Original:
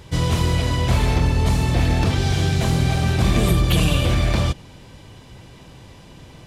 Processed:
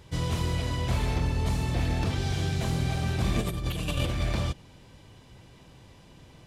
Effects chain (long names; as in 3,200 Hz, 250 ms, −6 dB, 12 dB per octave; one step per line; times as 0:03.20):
0:03.39–0:04.23: compressor whose output falls as the input rises −19 dBFS, ratio −0.5
level −9 dB